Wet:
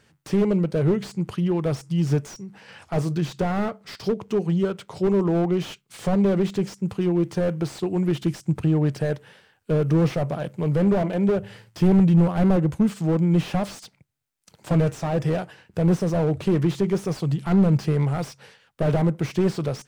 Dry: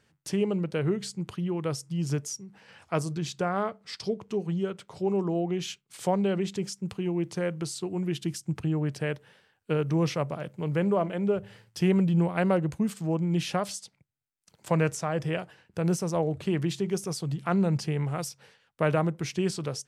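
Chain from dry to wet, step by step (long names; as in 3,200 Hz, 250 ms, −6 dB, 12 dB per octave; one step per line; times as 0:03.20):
slew-rate limiting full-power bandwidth 22 Hz
level +7.5 dB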